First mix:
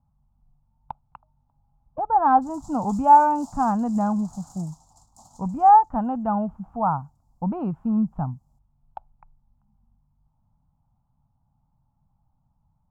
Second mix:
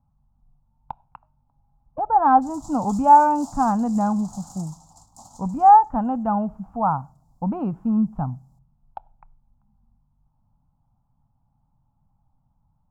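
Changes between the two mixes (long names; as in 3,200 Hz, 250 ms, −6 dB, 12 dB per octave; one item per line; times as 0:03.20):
background +3.5 dB
reverb: on, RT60 0.50 s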